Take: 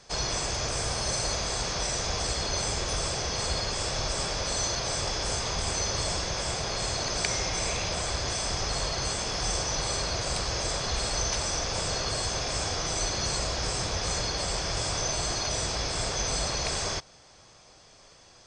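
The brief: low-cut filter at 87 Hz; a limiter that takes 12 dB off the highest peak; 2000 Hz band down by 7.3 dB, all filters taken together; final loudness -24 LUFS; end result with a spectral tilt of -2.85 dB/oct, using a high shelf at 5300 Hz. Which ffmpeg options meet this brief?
-af "highpass=87,equalizer=f=2k:t=o:g=-8.5,highshelf=f=5.3k:g=-7.5,volume=10dB,alimiter=limit=-15.5dB:level=0:latency=1"

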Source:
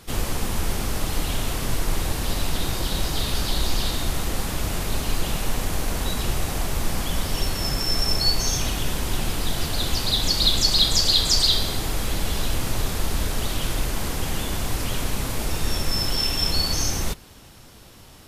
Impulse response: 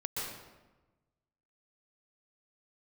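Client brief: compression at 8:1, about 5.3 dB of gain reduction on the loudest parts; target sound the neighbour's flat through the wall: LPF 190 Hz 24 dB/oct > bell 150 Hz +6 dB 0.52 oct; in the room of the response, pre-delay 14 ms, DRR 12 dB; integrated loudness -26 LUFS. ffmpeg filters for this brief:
-filter_complex "[0:a]acompressor=threshold=-21dB:ratio=8,asplit=2[a][b];[1:a]atrim=start_sample=2205,adelay=14[c];[b][c]afir=irnorm=-1:irlink=0,volume=-15.5dB[d];[a][d]amix=inputs=2:normalize=0,lowpass=f=190:w=0.5412,lowpass=f=190:w=1.3066,equalizer=f=150:t=o:w=0.52:g=6,volume=7dB"

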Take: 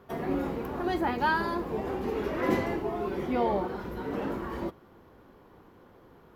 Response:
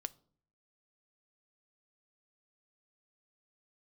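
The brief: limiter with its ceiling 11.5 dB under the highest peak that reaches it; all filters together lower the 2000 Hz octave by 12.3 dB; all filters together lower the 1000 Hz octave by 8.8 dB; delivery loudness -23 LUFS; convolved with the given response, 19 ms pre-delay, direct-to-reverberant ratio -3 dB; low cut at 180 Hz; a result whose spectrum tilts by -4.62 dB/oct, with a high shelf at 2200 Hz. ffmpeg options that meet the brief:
-filter_complex "[0:a]highpass=180,equalizer=f=1k:t=o:g=-8,equalizer=f=2k:t=o:g=-9,highshelf=f=2.2k:g=-8.5,alimiter=level_in=3.5dB:limit=-24dB:level=0:latency=1,volume=-3.5dB,asplit=2[a][b];[1:a]atrim=start_sample=2205,adelay=19[c];[b][c]afir=irnorm=-1:irlink=0,volume=5.5dB[d];[a][d]amix=inputs=2:normalize=0,volume=8.5dB"

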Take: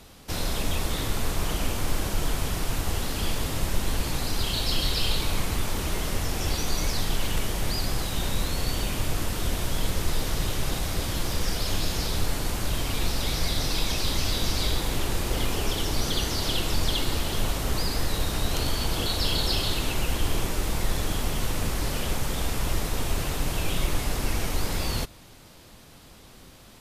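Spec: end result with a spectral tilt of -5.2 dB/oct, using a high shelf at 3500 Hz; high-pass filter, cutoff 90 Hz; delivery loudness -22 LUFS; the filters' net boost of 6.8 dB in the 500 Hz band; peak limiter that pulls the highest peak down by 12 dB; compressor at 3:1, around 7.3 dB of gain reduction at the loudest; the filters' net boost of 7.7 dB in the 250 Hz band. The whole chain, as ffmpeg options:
-af "highpass=90,equalizer=f=250:t=o:g=8.5,equalizer=f=500:t=o:g=6,highshelf=f=3.5k:g=-8,acompressor=threshold=-33dB:ratio=3,volume=19.5dB,alimiter=limit=-13.5dB:level=0:latency=1"

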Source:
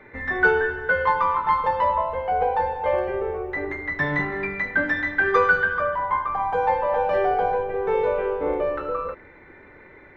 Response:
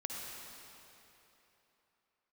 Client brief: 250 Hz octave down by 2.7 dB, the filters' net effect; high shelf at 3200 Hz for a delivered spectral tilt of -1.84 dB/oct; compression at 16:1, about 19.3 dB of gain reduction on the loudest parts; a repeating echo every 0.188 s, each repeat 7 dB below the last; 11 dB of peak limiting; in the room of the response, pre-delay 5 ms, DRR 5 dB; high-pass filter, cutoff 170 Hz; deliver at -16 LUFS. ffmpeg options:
-filter_complex "[0:a]highpass=170,equalizer=f=250:t=o:g=-3.5,highshelf=f=3.2k:g=7,acompressor=threshold=-33dB:ratio=16,alimiter=level_in=8.5dB:limit=-24dB:level=0:latency=1,volume=-8.5dB,aecho=1:1:188|376|564|752|940:0.447|0.201|0.0905|0.0407|0.0183,asplit=2[a][b];[1:a]atrim=start_sample=2205,adelay=5[c];[b][c]afir=irnorm=-1:irlink=0,volume=-6dB[d];[a][d]amix=inputs=2:normalize=0,volume=21.5dB"

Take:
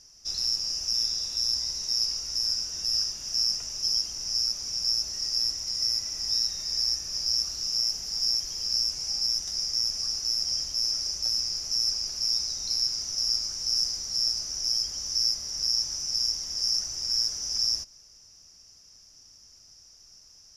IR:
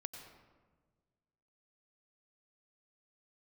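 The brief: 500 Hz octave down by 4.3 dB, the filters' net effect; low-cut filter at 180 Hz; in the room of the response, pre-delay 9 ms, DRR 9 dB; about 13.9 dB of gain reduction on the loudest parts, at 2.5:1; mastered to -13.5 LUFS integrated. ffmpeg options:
-filter_complex "[0:a]highpass=180,equalizer=f=500:t=o:g=-5.5,acompressor=threshold=-44dB:ratio=2.5,asplit=2[a][b];[1:a]atrim=start_sample=2205,adelay=9[c];[b][c]afir=irnorm=-1:irlink=0,volume=-6dB[d];[a][d]amix=inputs=2:normalize=0,volume=23.5dB"

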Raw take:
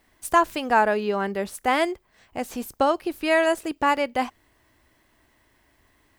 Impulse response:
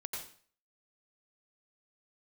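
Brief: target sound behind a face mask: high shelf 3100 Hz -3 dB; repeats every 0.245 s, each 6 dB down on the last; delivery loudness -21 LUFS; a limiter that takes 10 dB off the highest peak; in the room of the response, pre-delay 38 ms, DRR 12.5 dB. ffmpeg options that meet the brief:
-filter_complex "[0:a]alimiter=limit=-17dB:level=0:latency=1,aecho=1:1:245|490|735|980|1225|1470:0.501|0.251|0.125|0.0626|0.0313|0.0157,asplit=2[a][b];[1:a]atrim=start_sample=2205,adelay=38[c];[b][c]afir=irnorm=-1:irlink=0,volume=-12.5dB[d];[a][d]amix=inputs=2:normalize=0,highshelf=f=3.1k:g=-3,volume=7dB"

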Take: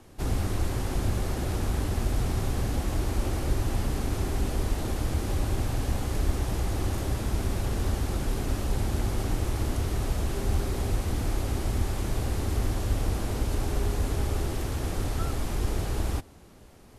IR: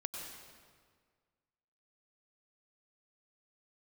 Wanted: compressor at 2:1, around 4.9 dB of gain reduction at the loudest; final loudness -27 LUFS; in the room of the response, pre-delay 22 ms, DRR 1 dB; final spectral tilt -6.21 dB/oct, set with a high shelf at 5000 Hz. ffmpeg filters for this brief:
-filter_complex "[0:a]highshelf=f=5k:g=-4.5,acompressor=threshold=-30dB:ratio=2,asplit=2[a][b];[1:a]atrim=start_sample=2205,adelay=22[c];[b][c]afir=irnorm=-1:irlink=0,volume=-1dB[d];[a][d]amix=inputs=2:normalize=0,volume=4.5dB"

